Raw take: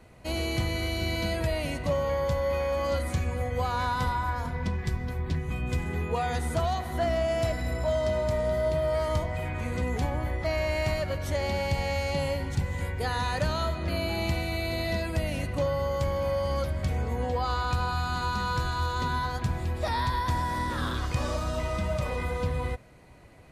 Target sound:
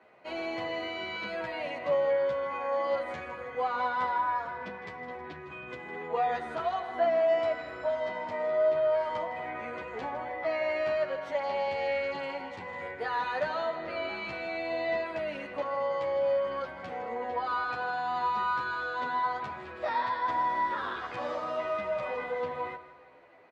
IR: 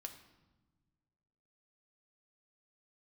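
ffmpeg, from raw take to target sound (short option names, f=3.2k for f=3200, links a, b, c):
-filter_complex "[0:a]asettb=1/sr,asplit=3[a][b][c];[a]atrim=end=5.254[d];[b]atrim=start=5.25:end=6,asetpts=PTS-STARTPTS,afade=t=in:d=0.004:c=qsin,afade=t=out:st=0.746:d=0.004:c=qsin,acompressor=threshold=-28dB:ratio=2.5[e];[c]atrim=start=5.996[f];[d][e]acrossfade=d=0.004:c1=hsin:c2=qsin[g];[g][f]acrossfade=d=0.004:c1=qsin:c2=hsin,highpass=470,lowpass=2.2k,aecho=1:1:159|318|477|636|795:0.211|0.104|0.0507|0.0249|0.0122,asplit=2[h][i];[i]adelay=10.8,afreqshift=-0.92[j];[h][j]amix=inputs=2:normalize=1,volume=4dB"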